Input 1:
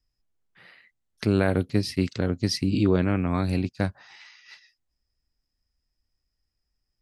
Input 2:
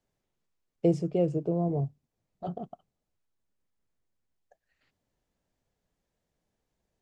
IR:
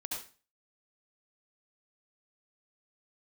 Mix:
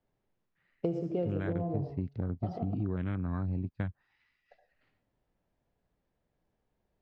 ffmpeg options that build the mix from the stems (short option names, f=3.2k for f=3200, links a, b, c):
-filter_complex "[0:a]lowpass=1.8k,afwtdn=0.0141,equalizer=f=530:w=0.42:g=-12,volume=1.5dB[a];[1:a]adynamicsmooth=sensitivity=7:basefreq=3.1k,volume=-1.5dB,asplit=2[b][c];[c]volume=-3dB[d];[2:a]atrim=start_sample=2205[e];[d][e]afir=irnorm=-1:irlink=0[f];[a][b][f]amix=inputs=3:normalize=0,acompressor=threshold=-30dB:ratio=4"